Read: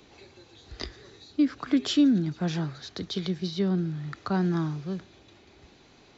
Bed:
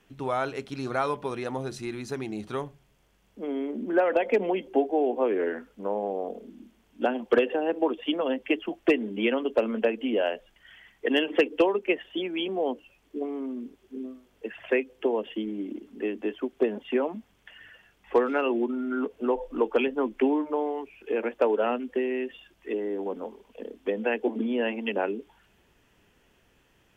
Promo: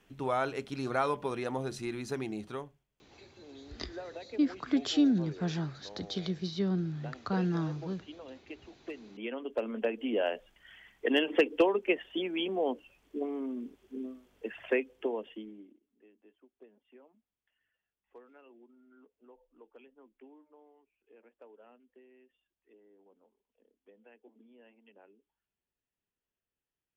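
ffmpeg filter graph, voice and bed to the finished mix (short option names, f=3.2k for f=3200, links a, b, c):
-filter_complex "[0:a]adelay=3000,volume=-4.5dB[a];[1:a]volume=15dB,afade=t=out:st=2.25:d=0.61:silence=0.125893,afade=t=in:st=8.99:d=1.45:silence=0.133352,afade=t=out:st=14.59:d=1.19:silence=0.0354813[b];[a][b]amix=inputs=2:normalize=0"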